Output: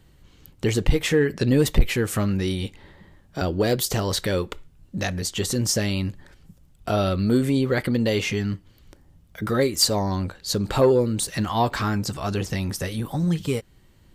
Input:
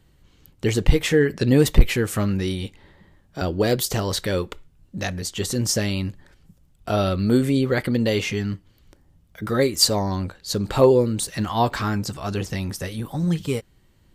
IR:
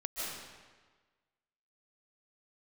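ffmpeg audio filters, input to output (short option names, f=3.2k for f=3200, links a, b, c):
-filter_complex "[0:a]asplit=2[a][b];[b]acompressor=threshold=-28dB:ratio=6,volume=0dB[c];[a][c]amix=inputs=2:normalize=0,asoftclip=type=tanh:threshold=-3.5dB,volume=-3dB"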